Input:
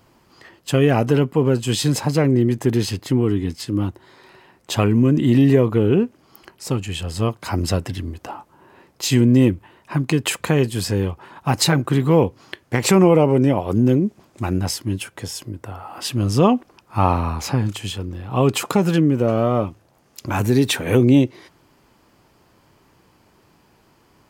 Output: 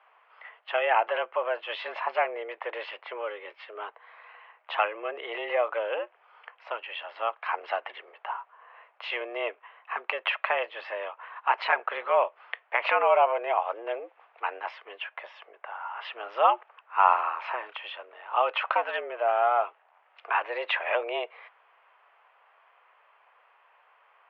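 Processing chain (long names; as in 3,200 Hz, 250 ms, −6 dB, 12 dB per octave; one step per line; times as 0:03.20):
single-sideband voice off tune +110 Hz 580–2,700 Hz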